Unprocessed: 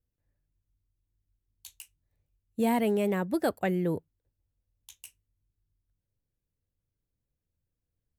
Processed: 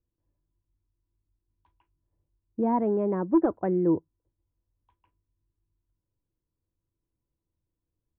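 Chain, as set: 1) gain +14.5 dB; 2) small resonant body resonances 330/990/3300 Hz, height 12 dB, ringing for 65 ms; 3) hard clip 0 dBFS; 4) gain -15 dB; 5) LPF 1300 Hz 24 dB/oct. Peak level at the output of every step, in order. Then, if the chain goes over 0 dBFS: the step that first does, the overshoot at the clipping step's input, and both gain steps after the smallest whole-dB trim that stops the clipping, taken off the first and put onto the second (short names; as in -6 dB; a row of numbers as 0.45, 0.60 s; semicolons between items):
-2.0, +5.0, 0.0, -15.0, -14.0 dBFS; step 2, 5.0 dB; step 1 +9.5 dB, step 4 -10 dB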